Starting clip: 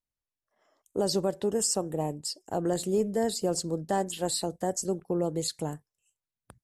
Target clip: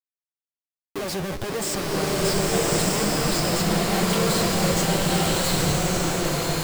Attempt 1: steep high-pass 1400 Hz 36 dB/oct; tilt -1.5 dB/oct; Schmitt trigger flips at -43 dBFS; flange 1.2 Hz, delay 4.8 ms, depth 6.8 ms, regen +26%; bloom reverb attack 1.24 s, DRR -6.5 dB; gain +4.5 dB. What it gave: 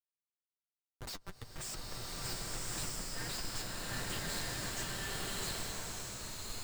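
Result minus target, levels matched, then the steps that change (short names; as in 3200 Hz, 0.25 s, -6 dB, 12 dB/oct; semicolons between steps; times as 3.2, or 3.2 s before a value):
1000 Hz band -2.5 dB
remove: steep high-pass 1400 Hz 36 dB/oct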